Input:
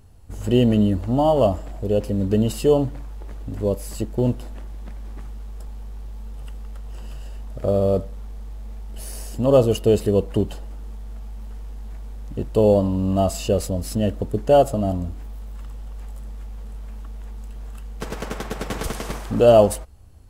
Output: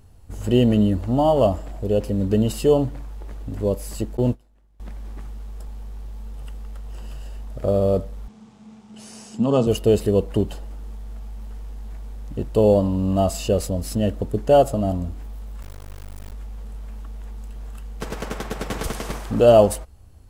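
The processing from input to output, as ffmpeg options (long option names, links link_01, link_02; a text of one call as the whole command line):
ffmpeg -i in.wav -filter_complex "[0:a]asettb=1/sr,asplit=3[link_01][link_02][link_03];[link_01]atrim=end=4.174[link_04];[link_02]atrim=start=4.17:end=4.8,asetpts=PTS-STARTPTS,afade=type=in:duration=0.004:curve=qsin,afade=type=out:start_time=0.626:duration=0.004:curve=qsin,agate=range=-33dB:threshold=-20dB:ratio=3:release=100:detection=peak[link_05];[link_03]atrim=start=4.796[link_06];[link_04][link_05]acrossfade=duration=0.004:curve1=hsin:curve2=qsin[link_07];[link_07][link_06]acrossfade=duration=0.004:curve1=qsin:curve2=hsin,asettb=1/sr,asplit=3[link_08][link_09][link_10];[link_08]atrim=end=8.284[link_11];[link_09]atrim=start=8.28:end=9.67,asetpts=PTS-STARTPTS,afade=type=in:duration=0.004:curve=qsin,afade=type=out:start_time=1.386:duration=0.004:curve=qsin,highpass=frequency=130:width=0.5412,highpass=frequency=130:width=1.3066,equalizer=frequency=210:width_type=q:width=4:gain=10,equalizer=frequency=320:width_type=q:width=4:gain=-5,equalizer=frequency=560:width_type=q:width=4:gain=-9,equalizer=frequency=1800:width_type=q:width=4:gain=-5,equalizer=frequency=4400:width_type=q:width=4:gain=-3,lowpass=frequency=7900:width=0.5412,lowpass=frequency=7900:width=1.3066[link_12];[link_10]atrim=start=9.666[link_13];[link_11][link_12]acrossfade=duration=0.004:curve1=hsin:curve2=qsin[link_14];[link_14][link_13]acrossfade=duration=0.004:curve1=qsin:curve2=hsin,asettb=1/sr,asplit=3[link_15][link_16][link_17];[link_15]atrim=end=15.624[link_18];[link_16]atrim=start=15.62:end=16.33,asetpts=PTS-STARTPTS,afade=type=in:duration=0.004:curve=qsin,afade=type=out:start_time=0.706:duration=0.004:curve=qsin,acrusher=bits=4:dc=4:mix=0:aa=0.000001[link_19];[link_17]atrim=start=16.326[link_20];[link_18][link_19]acrossfade=duration=0.004:curve1=hsin:curve2=qsin[link_21];[link_21][link_20]acrossfade=duration=0.004:curve1=qsin:curve2=hsin" out.wav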